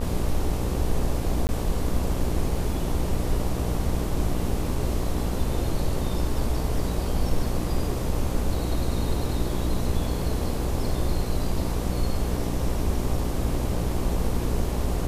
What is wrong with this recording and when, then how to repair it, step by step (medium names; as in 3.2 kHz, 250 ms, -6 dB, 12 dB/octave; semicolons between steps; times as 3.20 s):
buzz 60 Hz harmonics 20 -29 dBFS
1.47–1.49 s: dropout 19 ms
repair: de-hum 60 Hz, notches 20; interpolate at 1.47 s, 19 ms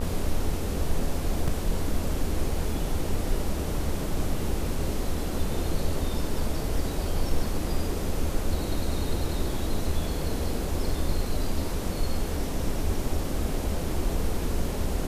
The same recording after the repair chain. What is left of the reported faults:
nothing left